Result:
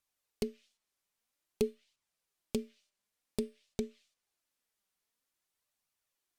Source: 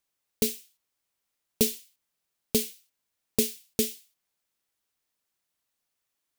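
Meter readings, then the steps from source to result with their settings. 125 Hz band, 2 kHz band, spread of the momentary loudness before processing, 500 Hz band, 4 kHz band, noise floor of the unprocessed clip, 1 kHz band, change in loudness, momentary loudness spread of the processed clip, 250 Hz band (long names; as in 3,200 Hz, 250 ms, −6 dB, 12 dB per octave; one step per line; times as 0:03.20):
−7.0 dB, −12.0 dB, 14 LU, −5.5 dB, −16.5 dB, −82 dBFS, −6.0 dB, −11.0 dB, 6 LU, −6.5 dB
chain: treble cut that deepens with the level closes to 740 Hz, closed at −24 dBFS
in parallel at +2 dB: brickwall limiter −18.5 dBFS, peak gain reduction 8.5 dB
on the sum: flanger 0.51 Hz, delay 0.7 ms, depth 4.7 ms, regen +57%
tuned comb filter 600 Hz, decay 0.43 s, mix 50%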